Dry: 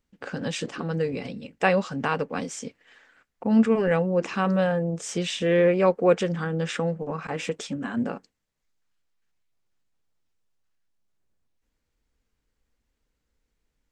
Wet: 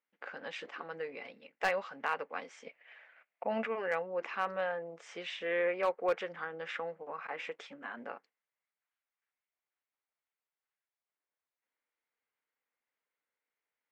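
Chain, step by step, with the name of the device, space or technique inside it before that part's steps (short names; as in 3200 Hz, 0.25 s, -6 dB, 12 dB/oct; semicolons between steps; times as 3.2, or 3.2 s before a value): megaphone (BPF 690–2500 Hz; bell 2100 Hz +5 dB 0.24 oct; hard clip -16.5 dBFS, distortion -19 dB); 2.66–3.67 fifteen-band EQ 160 Hz +9 dB, 630 Hz +11 dB, 2500 Hz +9 dB; gain -5.5 dB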